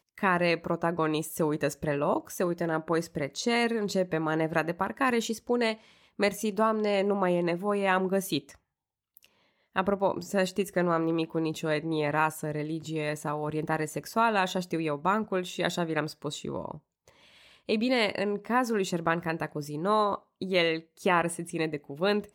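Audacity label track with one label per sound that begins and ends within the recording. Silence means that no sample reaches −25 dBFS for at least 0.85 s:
9.760000	16.710000	sound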